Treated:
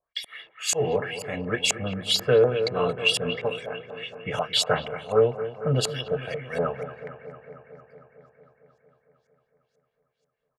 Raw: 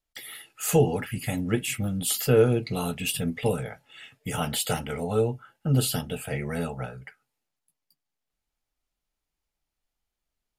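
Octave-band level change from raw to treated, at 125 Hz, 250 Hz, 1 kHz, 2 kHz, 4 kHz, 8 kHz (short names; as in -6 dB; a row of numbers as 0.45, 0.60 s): -4.5, -5.5, +2.5, +5.0, +8.0, 0.0 dB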